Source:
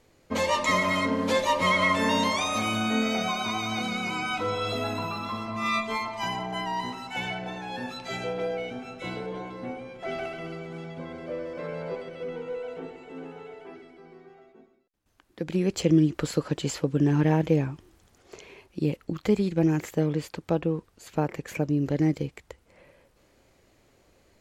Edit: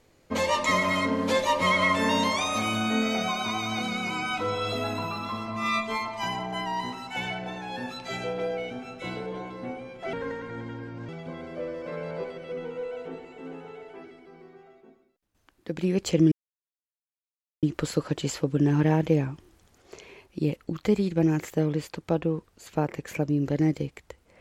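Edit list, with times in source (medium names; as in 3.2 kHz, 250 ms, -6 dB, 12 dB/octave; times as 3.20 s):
10.13–10.80 s: speed 70%
16.03 s: insert silence 1.31 s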